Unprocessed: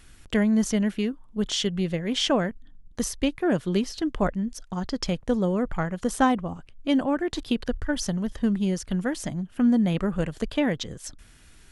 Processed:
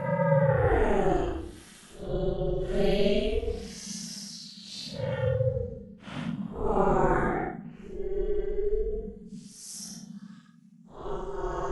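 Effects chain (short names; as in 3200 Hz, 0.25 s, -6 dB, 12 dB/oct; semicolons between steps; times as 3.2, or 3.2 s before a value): Paulstretch 8.5×, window 0.05 s, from 3.42; two-slope reverb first 0.6 s, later 2.7 s, from -21 dB, DRR 14 dB; ring modulator 200 Hz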